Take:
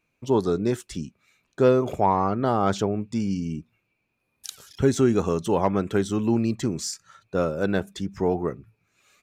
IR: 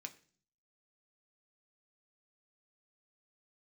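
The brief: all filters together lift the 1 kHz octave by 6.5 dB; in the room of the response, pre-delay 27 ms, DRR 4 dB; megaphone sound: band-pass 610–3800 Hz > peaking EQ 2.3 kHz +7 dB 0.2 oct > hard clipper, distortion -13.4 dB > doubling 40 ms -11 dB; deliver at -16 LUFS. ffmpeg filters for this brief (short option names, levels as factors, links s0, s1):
-filter_complex "[0:a]equalizer=f=1000:t=o:g=9,asplit=2[s0][s1];[1:a]atrim=start_sample=2205,adelay=27[s2];[s1][s2]afir=irnorm=-1:irlink=0,volume=1[s3];[s0][s3]amix=inputs=2:normalize=0,highpass=610,lowpass=3800,equalizer=f=2300:t=o:w=0.2:g=7,asoftclip=type=hard:threshold=0.237,asplit=2[s4][s5];[s5]adelay=40,volume=0.282[s6];[s4][s6]amix=inputs=2:normalize=0,volume=2.82"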